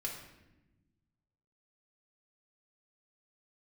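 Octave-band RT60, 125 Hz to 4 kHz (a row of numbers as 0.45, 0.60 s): 2.0, 1.7, 1.1, 0.85, 0.90, 0.70 s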